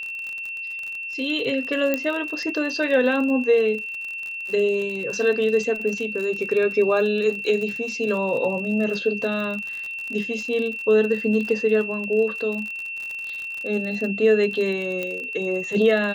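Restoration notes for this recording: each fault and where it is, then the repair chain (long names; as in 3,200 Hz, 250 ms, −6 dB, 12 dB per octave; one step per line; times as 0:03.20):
surface crackle 46 per second −29 dBFS
whistle 2,700 Hz −29 dBFS
0:01.94: click −9 dBFS
0:15.03: click −15 dBFS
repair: click removal
notch filter 2,700 Hz, Q 30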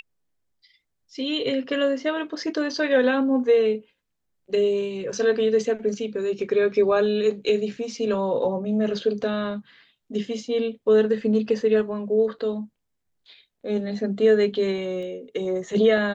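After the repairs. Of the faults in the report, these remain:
0:15.03: click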